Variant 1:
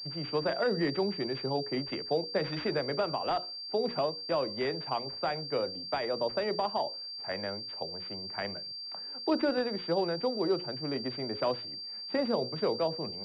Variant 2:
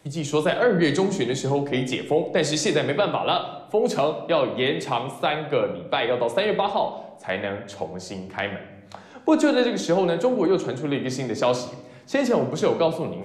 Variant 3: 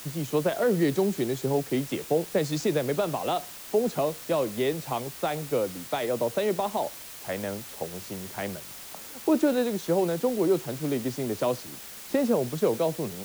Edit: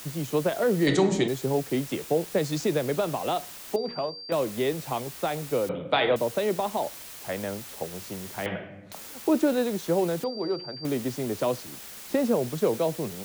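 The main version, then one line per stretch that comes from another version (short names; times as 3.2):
3
0.87–1.28 from 2
3.76–4.32 from 1
5.69–6.16 from 2
8.46–8.92 from 2
10.24–10.85 from 1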